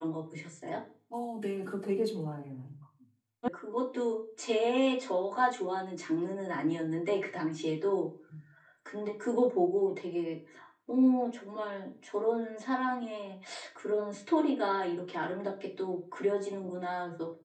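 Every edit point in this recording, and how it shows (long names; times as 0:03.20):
0:03.48: cut off before it has died away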